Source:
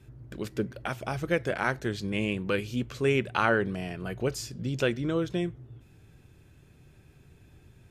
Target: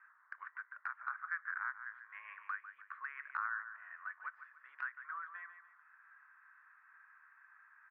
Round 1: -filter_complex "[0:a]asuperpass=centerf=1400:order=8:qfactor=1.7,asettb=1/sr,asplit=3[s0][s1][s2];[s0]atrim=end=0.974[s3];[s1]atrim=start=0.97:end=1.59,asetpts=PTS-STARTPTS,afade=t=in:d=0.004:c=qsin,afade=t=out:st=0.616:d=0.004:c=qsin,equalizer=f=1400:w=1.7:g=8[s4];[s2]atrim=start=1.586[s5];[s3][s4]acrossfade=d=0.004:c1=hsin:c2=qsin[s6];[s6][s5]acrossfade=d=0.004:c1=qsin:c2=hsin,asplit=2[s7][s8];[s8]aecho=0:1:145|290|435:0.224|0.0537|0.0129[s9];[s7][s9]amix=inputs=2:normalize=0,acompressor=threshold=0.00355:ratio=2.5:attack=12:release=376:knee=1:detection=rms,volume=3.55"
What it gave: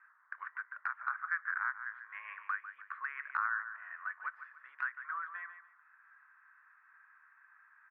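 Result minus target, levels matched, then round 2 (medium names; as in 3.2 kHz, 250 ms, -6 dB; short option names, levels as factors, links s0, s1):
compression: peak gain reduction -5 dB
-filter_complex "[0:a]asuperpass=centerf=1400:order=8:qfactor=1.7,asettb=1/sr,asplit=3[s0][s1][s2];[s0]atrim=end=0.974[s3];[s1]atrim=start=0.97:end=1.59,asetpts=PTS-STARTPTS,afade=t=in:d=0.004:c=qsin,afade=t=out:st=0.616:d=0.004:c=qsin,equalizer=f=1400:w=1.7:g=8[s4];[s2]atrim=start=1.586[s5];[s3][s4]acrossfade=d=0.004:c1=hsin:c2=qsin[s6];[s6][s5]acrossfade=d=0.004:c1=qsin:c2=hsin,asplit=2[s7][s8];[s8]aecho=0:1:145|290|435:0.224|0.0537|0.0129[s9];[s7][s9]amix=inputs=2:normalize=0,acompressor=threshold=0.00141:ratio=2.5:attack=12:release=376:knee=1:detection=rms,volume=3.55"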